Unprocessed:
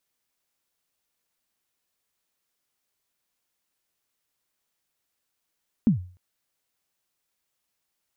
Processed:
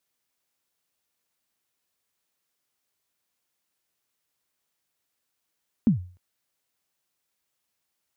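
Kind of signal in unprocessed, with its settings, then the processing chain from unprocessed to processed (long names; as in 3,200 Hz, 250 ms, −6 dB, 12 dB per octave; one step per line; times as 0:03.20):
synth kick length 0.30 s, from 250 Hz, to 90 Hz, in 117 ms, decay 0.41 s, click off, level −12 dB
high-pass filter 49 Hz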